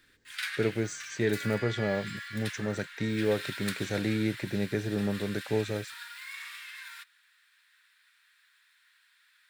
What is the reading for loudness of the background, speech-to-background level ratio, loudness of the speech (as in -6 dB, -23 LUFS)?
-40.0 LUFS, 8.0 dB, -32.0 LUFS